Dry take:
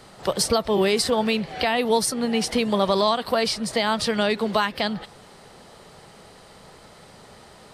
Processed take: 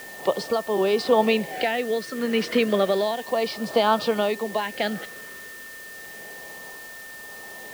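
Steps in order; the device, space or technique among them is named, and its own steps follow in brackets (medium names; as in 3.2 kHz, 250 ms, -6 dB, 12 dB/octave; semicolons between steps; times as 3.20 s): shortwave radio (band-pass 280–2600 Hz; tremolo 0.78 Hz, depth 58%; LFO notch sine 0.32 Hz 780–1900 Hz; whistle 1.8 kHz -45 dBFS; white noise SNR 20 dB); trim +5.5 dB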